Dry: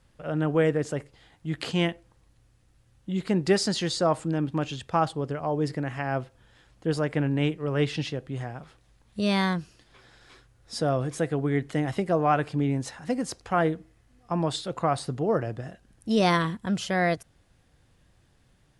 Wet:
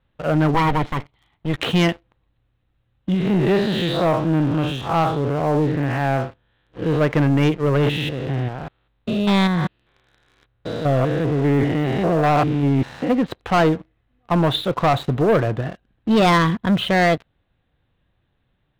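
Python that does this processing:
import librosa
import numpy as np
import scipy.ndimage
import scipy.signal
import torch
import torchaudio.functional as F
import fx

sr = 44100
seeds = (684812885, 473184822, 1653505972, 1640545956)

y = fx.lower_of_two(x, sr, delay_ms=0.93, at=(0.54, 1.56))
y = fx.spec_blur(y, sr, span_ms=142.0, at=(3.14, 7.01))
y = fx.spec_steps(y, sr, hold_ms=200, at=(7.76, 13.09), fade=0.02)
y = scipy.signal.sosfilt(scipy.signal.cheby1(6, 1.0, 3900.0, 'lowpass', fs=sr, output='sos'), y)
y = fx.leveller(y, sr, passes=3)
y = F.gain(torch.from_numpy(y), 1.5).numpy()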